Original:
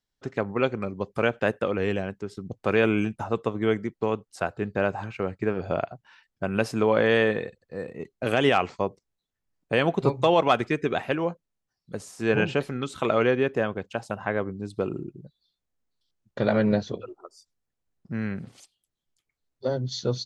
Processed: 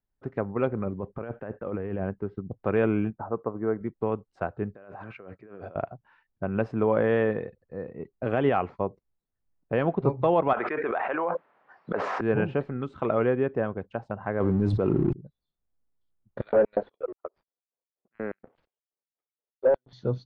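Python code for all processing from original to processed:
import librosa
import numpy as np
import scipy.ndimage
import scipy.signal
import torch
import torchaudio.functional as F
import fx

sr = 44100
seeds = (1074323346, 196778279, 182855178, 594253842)

y = fx.chain(x, sr, fx.lowpass(hz=2300.0, slope=12),
    fx.over_compress(threshold_db=-30.0, ratio=-1.0),
    fx.quant_float(bits=4), at=(0.67, 2.41))
y = fx.chain(y, sr, fx.lowpass(hz=1600.0, slope=24),
    fx.low_shelf(hz=170.0, db=-9.5), at=(3.1, 3.81))
y = fx.chain(y, sr, fx.over_compress(threshold_db=-37.0, ratio=-1.0),
    fx.highpass(hz=440.0, slope=6),
    fx.peak_eq(hz=860.0, db=-9.0, octaves=0.22), at=(4.74, 5.76))
y = fx.chain(y, sr, fx.bandpass_edges(low_hz=780.0, high_hz=2000.0),
    fx.env_flatten(amount_pct=100), at=(10.53, 12.21))
y = fx.chain(y, sr, fx.law_mismatch(coded='mu'),
    fx.high_shelf(hz=3400.0, db=8.0),
    fx.env_flatten(amount_pct=100), at=(14.4, 15.13))
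y = fx.chain(y, sr, fx.filter_lfo_highpass(shape='square', hz=4.2, low_hz=500.0, high_hz=4400.0, q=1.9),
    fx.leveller(passes=2),
    fx.air_absorb(metres=460.0), at=(16.41, 19.93))
y = scipy.signal.sosfilt(scipy.signal.butter(2, 1400.0, 'lowpass', fs=sr, output='sos'), y)
y = fx.low_shelf(y, sr, hz=78.0, db=7.0)
y = y * librosa.db_to_amplitude(-2.0)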